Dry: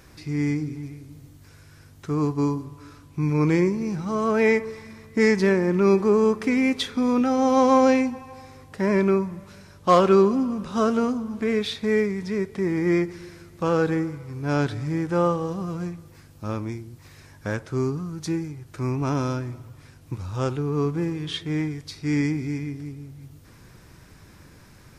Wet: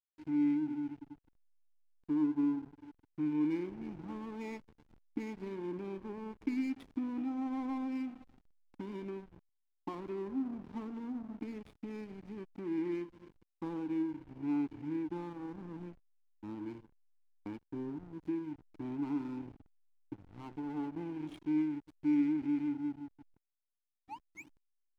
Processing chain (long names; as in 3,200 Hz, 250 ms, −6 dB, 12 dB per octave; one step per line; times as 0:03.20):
0:19.45–0:21.26: lower of the sound and its delayed copy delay 0.73 ms
downward compressor 3 to 1, threshold −29 dBFS, peak gain reduction 13 dB
spring reverb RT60 1.3 s, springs 51/59 ms, chirp 35 ms, DRR 15.5 dB
0:24.02–0:24.63: sound drawn into the spectrogram rise 590–5,300 Hz −36 dBFS
formant filter u
slack as between gear wheels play −43.5 dBFS
level +3 dB